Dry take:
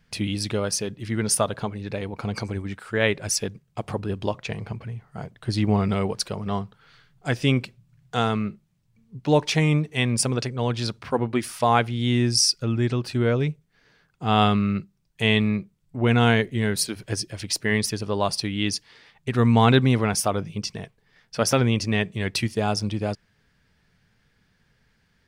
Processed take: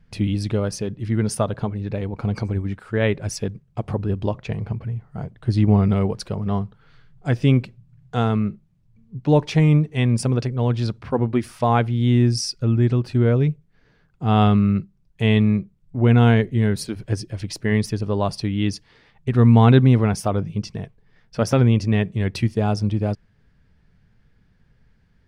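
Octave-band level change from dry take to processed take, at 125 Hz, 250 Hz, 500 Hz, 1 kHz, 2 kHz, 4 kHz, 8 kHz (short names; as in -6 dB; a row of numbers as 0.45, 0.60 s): +6.5, +4.5, +1.5, -0.5, -3.5, -6.0, -8.0 dB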